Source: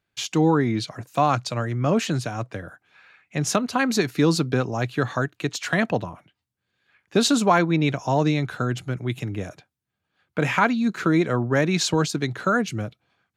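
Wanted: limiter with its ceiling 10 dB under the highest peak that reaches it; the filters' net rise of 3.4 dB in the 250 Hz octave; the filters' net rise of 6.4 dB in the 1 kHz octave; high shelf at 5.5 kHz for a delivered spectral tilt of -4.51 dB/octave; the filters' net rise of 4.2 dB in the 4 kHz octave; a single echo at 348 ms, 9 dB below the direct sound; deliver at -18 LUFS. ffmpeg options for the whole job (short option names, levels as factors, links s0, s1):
-af "equalizer=f=250:t=o:g=4,equalizer=f=1000:t=o:g=8,equalizer=f=4000:t=o:g=7.5,highshelf=f=5500:g=-8,alimiter=limit=0.335:level=0:latency=1,aecho=1:1:348:0.355,volume=1.5"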